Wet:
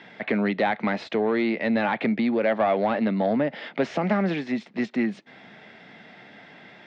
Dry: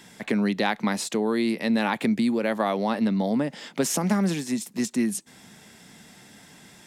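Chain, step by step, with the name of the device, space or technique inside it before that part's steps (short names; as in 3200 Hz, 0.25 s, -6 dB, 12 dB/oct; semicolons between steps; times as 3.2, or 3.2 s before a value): overdrive pedal into a guitar cabinet (overdrive pedal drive 16 dB, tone 1300 Hz, clips at -10 dBFS; speaker cabinet 87–4100 Hz, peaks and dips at 120 Hz +3 dB, 640 Hz +4 dB, 1000 Hz -5 dB, 2100 Hz +4 dB); gain -1.5 dB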